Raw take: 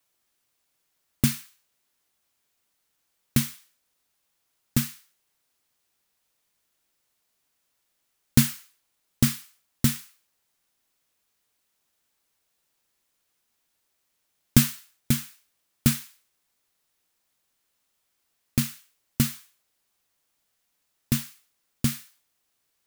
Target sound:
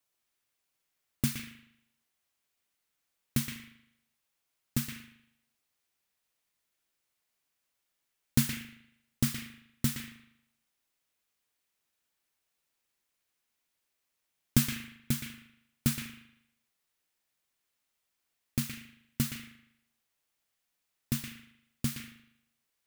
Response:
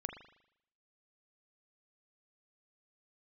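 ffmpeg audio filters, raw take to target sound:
-filter_complex "[0:a]asplit=2[s0][s1];[s1]equalizer=f=2300:t=o:w=1.9:g=14.5[s2];[1:a]atrim=start_sample=2205,adelay=119[s3];[s2][s3]afir=irnorm=-1:irlink=0,volume=0.237[s4];[s0][s4]amix=inputs=2:normalize=0,volume=0.422"

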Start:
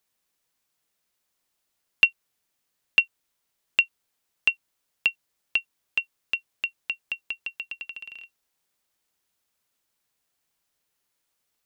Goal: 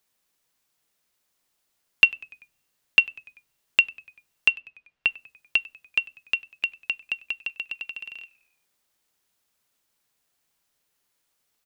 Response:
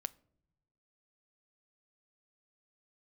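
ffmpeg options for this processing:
-filter_complex "[0:a]asettb=1/sr,asplit=3[s0][s1][s2];[s0]atrim=end=4.514[s3];[s1]atrim=start=4.51:end=5.09,asetpts=PTS-STARTPTS,afade=t=in:d=0.004:c=qsin,afade=t=out:st=0.576:d=0.004:c=qsin,lowpass=3000[s4];[s2]atrim=start=5.086[s5];[s3][s4]acrossfade=d=0.004:c1=hsin:c2=qsin[s6];[s6][s5]acrossfade=d=0.004:c1=qsin:c2=hsin,asplit=5[s7][s8][s9][s10][s11];[s8]adelay=97,afreqshift=-79,volume=0.0668[s12];[s9]adelay=194,afreqshift=-158,volume=0.0367[s13];[s10]adelay=291,afreqshift=-237,volume=0.0202[s14];[s11]adelay=388,afreqshift=-316,volume=0.0111[s15];[s7][s12][s13][s14][s15]amix=inputs=5:normalize=0,asplit=2[s16][s17];[1:a]atrim=start_sample=2205[s18];[s17][s18]afir=irnorm=-1:irlink=0,volume=0.891[s19];[s16][s19]amix=inputs=2:normalize=0,volume=0.794"

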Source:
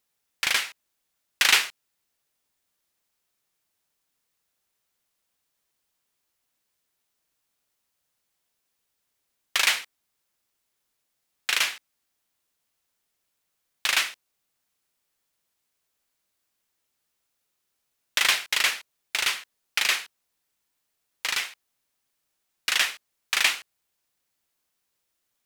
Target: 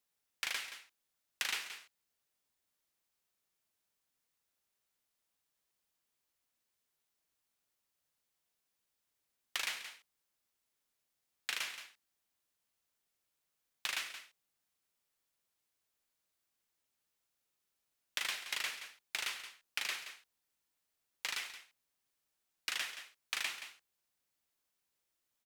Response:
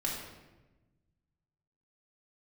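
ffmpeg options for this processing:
-filter_complex "[0:a]aecho=1:1:174:0.133,acrossover=split=330|1600[s0][s1][s2];[s0]acompressor=threshold=0.00112:ratio=4[s3];[s1]acompressor=threshold=0.01:ratio=4[s4];[s2]acompressor=threshold=0.0316:ratio=4[s5];[s3][s4][s5]amix=inputs=3:normalize=0,volume=0.447"

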